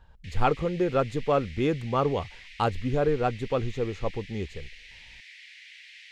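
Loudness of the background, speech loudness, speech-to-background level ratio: -46.5 LUFS, -28.0 LUFS, 18.5 dB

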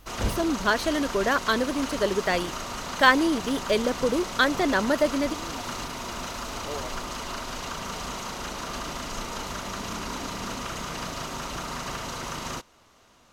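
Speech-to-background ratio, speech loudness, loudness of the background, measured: 9.0 dB, -24.5 LUFS, -33.5 LUFS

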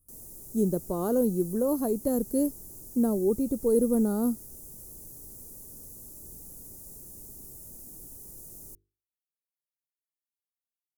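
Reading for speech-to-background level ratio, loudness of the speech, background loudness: 16.0 dB, -27.5 LUFS, -43.5 LUFS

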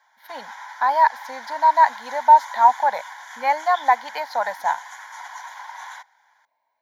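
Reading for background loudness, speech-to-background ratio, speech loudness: -37.0 LUFS, 18.0 dB, -19.0 LUFS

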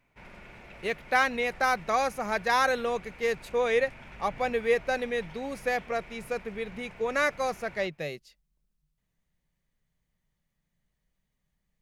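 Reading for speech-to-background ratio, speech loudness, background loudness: 19.5 dB, -29.0 LUFS, -48.5 LUFS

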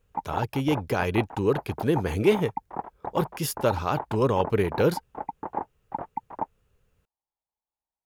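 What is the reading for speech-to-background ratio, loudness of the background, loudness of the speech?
10.0 dB, -36.5 LUFS, -26.5 LUFS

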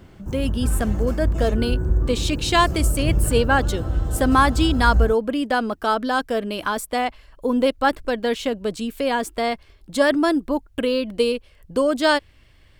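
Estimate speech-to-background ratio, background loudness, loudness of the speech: 2.0 dB, -24.5 LUFS, -22.5 LUFS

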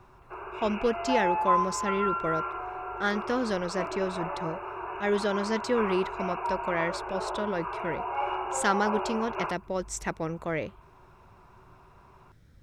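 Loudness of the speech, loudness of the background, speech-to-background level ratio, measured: -31.0 LUFS, -32.5 LUFS, 1.5 dB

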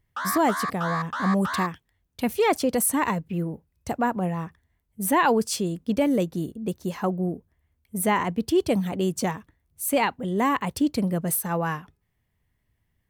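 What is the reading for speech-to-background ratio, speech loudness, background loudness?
5.0 dB, -25.5 LUFS, -30.5 LUFS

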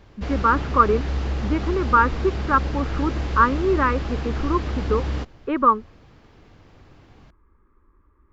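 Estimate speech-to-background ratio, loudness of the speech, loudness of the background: 6.0 dB, -22.0 LUFS, -28.0 LUFS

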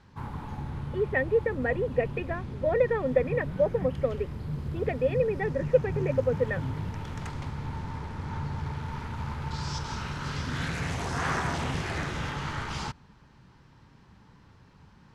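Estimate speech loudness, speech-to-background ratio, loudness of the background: -28.5 LUFS, 6.0 dB, -34.5 LUFS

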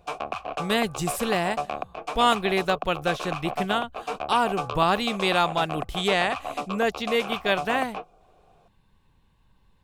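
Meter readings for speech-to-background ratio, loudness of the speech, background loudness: 7.5 dB, -25.5 LUFS, -33.0 LUFS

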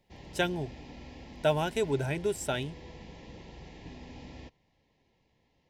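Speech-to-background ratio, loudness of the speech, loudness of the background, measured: 16.5 dB, -31.5 LUFS, -48.0 LUFS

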